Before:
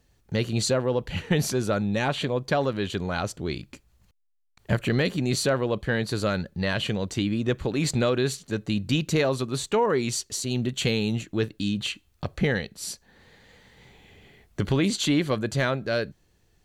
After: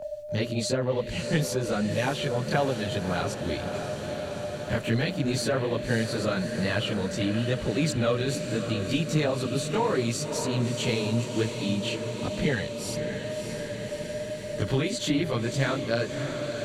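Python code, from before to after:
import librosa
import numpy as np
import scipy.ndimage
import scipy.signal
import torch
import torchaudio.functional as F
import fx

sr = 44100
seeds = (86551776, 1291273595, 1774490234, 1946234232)

y = x + 10.0 ** (-34.0 / 20.0) * np.sin(2.0 * np.pi * 600.0 * np.arange(len(x)) / sr)
y = fx.chorus_voices(y, sr, voices=2, hz=0.96, base_ms=22, depth_ms=4.7, mix_pct=65)
y = fx.echo_diffused(y, sr, ms=612, feedback_pct=70, wet_db=-10)
y = fx.band_squash(y, sr, depth_pct=40)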